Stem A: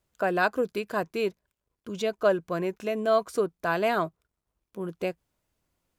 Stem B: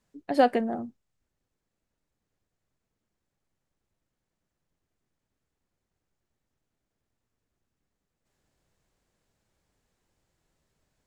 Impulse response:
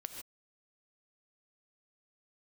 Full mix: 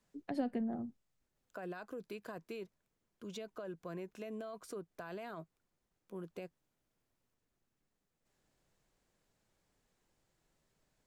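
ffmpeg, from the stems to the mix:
-filter_complex "[0:a]alimiter=limit=-22.5dB:level=0:latency=1:release=23,adelay=1350,volume=-10.5dB[a];[1:a]volume=-2dB[b];[a][b]amix=inputs=2:normalize=0,equalizer=f=72:t=o:w=0.73:g=-7.5,acrossover=split=240[c][d];[d]acompressor=threshold=-43dB:ratio=5[e];[c][e]amix=inputs=2:normalize=0"

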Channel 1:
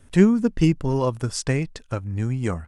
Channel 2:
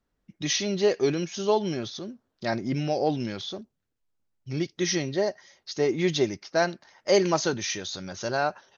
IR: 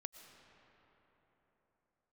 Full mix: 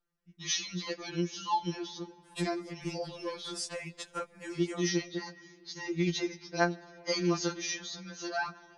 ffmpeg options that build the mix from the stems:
-filter_complex "[0:a]highpass=f=500:p=1,acompressor=threshold=-34dB:ratio=10,adelay=2250,volume=3dB,asplit=2[a][b];[b]volume=-12.5dB[c];[1:a]equalizer=f=610:t=o:w=0.41:g=-9,volume=-5dB,asplit=3[d][e][f];[e]volume=-7dB[g];[f]apad=whole_len=217266[h];[a][h]sidechaincompress=threshold=-32dB:ratio=8:attack=16:release=1440[i];[2:a]atrim=start_sample=2205[j];[c][g]amix=inputs=2:normalize=0[k];[k][j]afir=irnorm=-1:irlink=0[l];[i][d][l]amix=inputs=3:normalize=0,equalizer=f=64:w=0.36:g=-5.5,afftfilt=real='re*2.83*eq(mod(b,8),0)':imag='im*2.83*eq(mod(b,8),0)':win_size=2048:overlap=0.75"

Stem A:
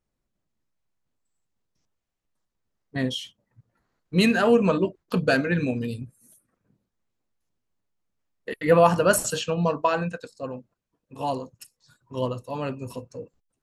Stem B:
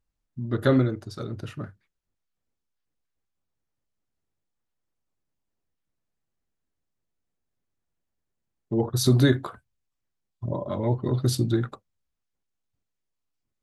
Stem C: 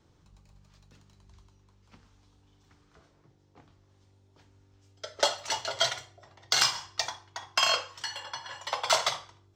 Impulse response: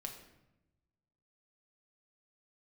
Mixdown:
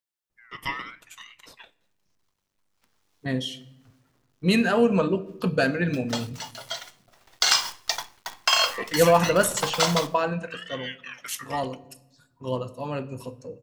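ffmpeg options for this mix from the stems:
-filter_complex "[0:a]adelay=300,volume=-4dB,asplit=2[a][b];[b]volume=-4.5dB[c];[1:a]crystalizer=i=1:c=0,highpass=510,aeval=exprs='val(0)*sin(2*PI*2000*n/s+2000*0.25/0.74*sin(2*PI*0.74*n/s))':c=same,volume=-3.5dB,asplit=2[d][e];[e]volume=-11dB[f];[2:a]highpass=f=500:p=1,dynaudnorm=f=400:g=5:m=15dB,acrusher=bits=6:dc=4:mix=0:aa=0.000001,adelay=900,volume=-3.5dB,afade=t=in:st=2.68:d=0.55:silence=0.354813,afade=t=in:st=6.84:d=0.44:silence=0.266073[g];[3:a]atrim=start_sample=2205[h];[c][f]amix=inputs=2:normalize=0[i];[i][h]afir=irnorm=-1:irlink=0[j];[a][d][g][j]amix=inputs=4:normalize=0"

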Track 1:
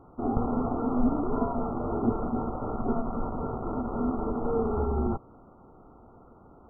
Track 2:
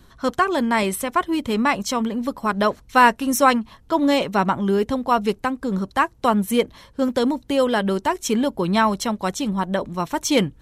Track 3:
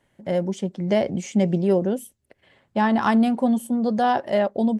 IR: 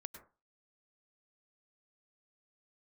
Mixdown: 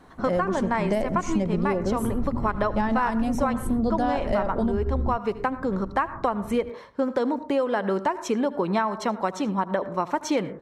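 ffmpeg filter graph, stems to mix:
-filter_complex "[0:a]acompressor=threshold=-36dB:ratio=2,asubboost=boost=12:cutoff=220,volume=-2dB[a];[1:a]bandpass=f=800:t=q:w=0.52:csg=0,volume=1dB,asplit=3[b][c][d];[c]volume=-5dB[e];[d]volume=-17.5dB[f];[2:a]volume=2dB,asplit=2[g][h];[h]volume=-3.5dB[i];[3:a]atrim=start_sample=2205[j];[e][i]amix=inputs=2:normalize=0[k];[k][j]afir=irnorm=-1:irlink=0[l];[f]aecho=0:1:77:1[m];[a][b][g][l][m]amix=inputs=5:normalize=0,equalizer=f=3.2k:t=o:w=0.4:g=-5.5,acompressor=threshold=-20dB:ratio=12"

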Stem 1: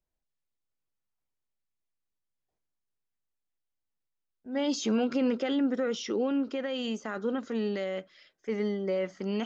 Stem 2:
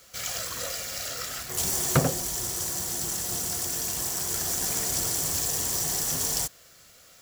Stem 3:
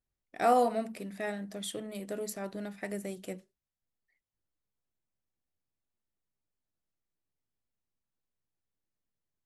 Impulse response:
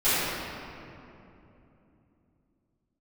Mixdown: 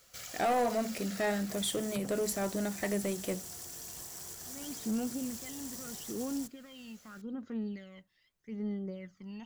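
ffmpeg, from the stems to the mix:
-filter_complex "[0:a]asubboost=boost=4.5:cutoff=190,aphaser=in_gain=1:out_gain=1:delay=1.1:decay=0.64:speed=0.8:type=sinusoidal,volume=-17dB[a];[1:a]alimiter=limit=-18dB:level=0:latency=1:release=434,acompressor=threshold=-33dB:ratio=6,volume=-8.5dB[b];[2:a]acontrast=76,alimiter=limit=-15.5dB:level=0:latency=1:release=481,volume=-0.5dB[c];[a][b][c]amix=inputs=3:normalize=0,asoftclip=type=tanh:threshold=-24dB"

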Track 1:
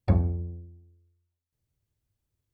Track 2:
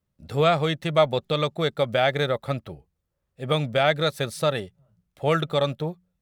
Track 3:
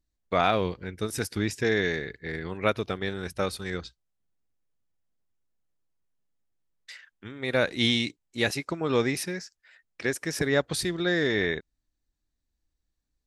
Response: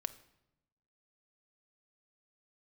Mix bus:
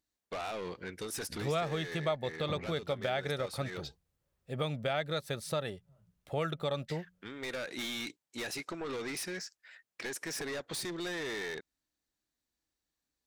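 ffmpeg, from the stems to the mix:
-filter_complex "[0:a]highpass=f=130:w=0.5412,highpass=f=130:w=1.3066,adelay=2400,volume=-7.5dB[a];[1:a]adelay=1100,volume=-3dB[b];[2:a]highpass=f=360:p=1,acompressor=threshold=-26dB:ratio=6,asoftclip=type=tanh:threshold=-34.5dB,volume=1.5dB[c];[a][b][c]amix=inputs=3:normalize=0,acompressor=threshold=-37dB:ratio=2"

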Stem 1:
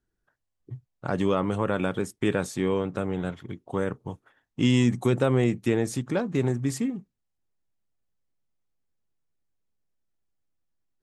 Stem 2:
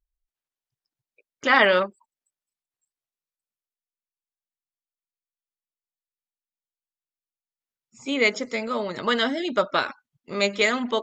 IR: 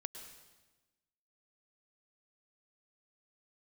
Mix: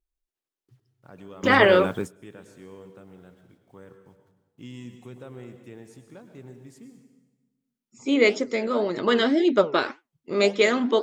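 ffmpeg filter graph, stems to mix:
-filter_complex "[0:a]acrusher=bits=8:mix=0:aa=0.000001,volume=-2dB,asplit=2[a][b];[b]volume=-16dB[c];[1:a]flanger=delay=5.4:depth=9.5:regen=80:speed=1.9:shape=triangular,equalizer=f=350:w=1.3:g=10.5,volume=2.5dB,asplit=2[d][e];[e]apad=whole_len=486192[f];[a][f]sidechaingate=range=-33dB:threshold=-48dB:ratio=16:detection=peak[g];[2:a]atrim=start_sample=2205[h];[c][h]afir=irnorm=-1:irlink=0[i];[g][d][i]amix=inputs=3:normalize=0"

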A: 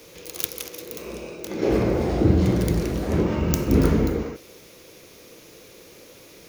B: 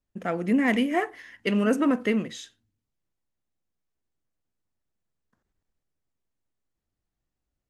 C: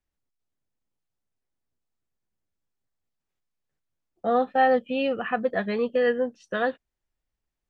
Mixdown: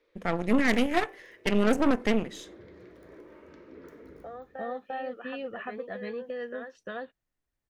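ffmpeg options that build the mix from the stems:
-filter_complex "[0:a]bandreject=f=740:w=12,flanger=delay=7:depth=7:regen=-64:speed=1.7:shape=sinusoidal,volume=-16.5dB,asplit=2[a][b];[b]volume=-17.5dB[c];[1:a]bandreject=f=195.3:t=h:w=4,bandreject=f=390.6:t=h:w=4,bandreject=f=585.9:t=h:w=4,bandreject=f=781.2:t=h:w=4,bandreject=f=976.5:t=h:w=4,bandreject=f=1.1718k:t=h:w=4,bandreject=f=1.3671k:t=h:w=4,bandreject=f=1.5624k:t=h:w=4,bandreject=f=1.7577k:t=h:w=4,bandreject=f=1.953k:t=h:w=4,bandreject=f=2.1483k:t=h:w=4,bandreject=f=2.3436k:t=h:w=4,bandreject=f=2.5389k:t=h:w=4,bandreject=f=2.7342k:t=h:w=4,bandreject=f=2.9295k:t=h:w=4,bandreject=f=3.1248k:t=h:w=4,bandreject=f=3.3201k:t=h:w=4,bandreject=f=3.5154k:t=h:w=4,bandreject=f=3.7107k:t=h:w=4,bandreject=f=3.906k:t=h:w=4,bandreject=f=4.1013k:t=h:w=4,aeval=exprs='0.282*(cos(1*acos(clip(val(0)/0.282,-1,1)))-cos(1*PI/2))+0.0501*(cos(3*acos(clip(val(0)/0.282,-1,1)))-cos(3*PI/2))+0.0224*(cos(4*acos(clip(val(0)/0.282,-1,1)))-cos(4*PI/2))+0.0447*(cos(6*acos(clip(val(0)/0.282,-1,1)))-cos(6*PI/2))':c=same,volume=2dB[d];[2:a]acompressor=threshold=-27dB:ratio=3,volume=-3dB,asplit=2[e][f];[f]volume=-5dB[g];[a][e]amix=inputs=2:normalize=0,highpass=f=310:w=0.5412,highpass=f=310:w=1.3066,equalizer=f=810:t=q:w=4:g=-4,equalizer=f=1.8k:t=q:w=4:g=5,equalizer=f=2.8k:t=q:w=4:g=-8,lowpass=f=3.5k:w=0.5412,lowpass=f=3.5k:w=1.3066,acompressor=threshold=-48dB:ratio=2,volume=0dB[h];[c][g]amix=inputs=2:normalize=0,aecho=0:1:346:1[i];[d][h][i]amix=inputs=3:normalize=0"

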